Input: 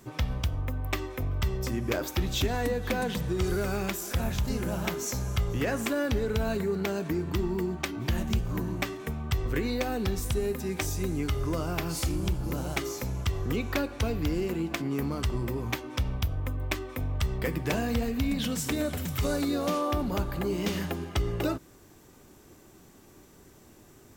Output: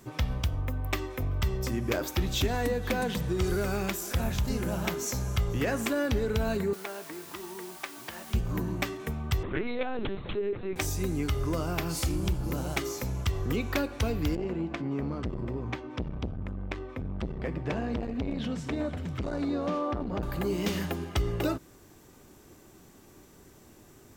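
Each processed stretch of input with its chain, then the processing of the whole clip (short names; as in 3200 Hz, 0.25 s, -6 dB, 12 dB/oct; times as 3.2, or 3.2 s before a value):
6.73–8.34 tilt -4 dB/oct + requantised 8-bit, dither triangular + HPF 960 Hz
9.43–10.76 HPF 150 Hz 6 dB/oct + LPC vocoder at 8 kHz pitch kept
14.35–20.23 tape spacing loss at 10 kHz 22 dB + core saturation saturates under 330 Hz
whole clip: dry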